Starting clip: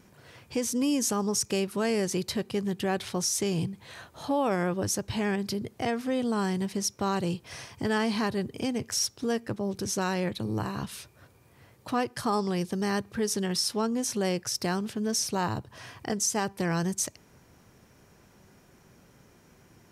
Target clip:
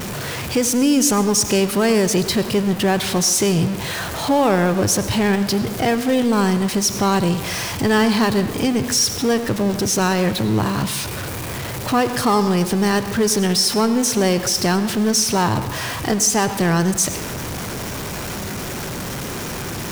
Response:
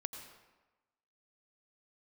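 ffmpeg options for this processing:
-filter_complex "[0:a]aeval=exprs='val(0)+0.5*0.0282*sgn(val(0))':c=same,asplit=2[a][b];[1:a]atrim=start_sample=2205[c];[b][c]afir=irnorm=-1:irlink=0,volume=2.5dB[d];[a][d]amix=inputs=2:normalize=0,volume=2.5dB"

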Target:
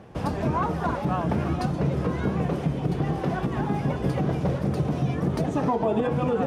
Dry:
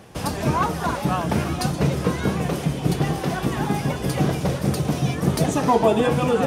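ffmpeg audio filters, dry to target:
-af "lowpass=f=1.2k:p=1,alimiter=limit=-15.5dB:level=0:latency=1:release=105"

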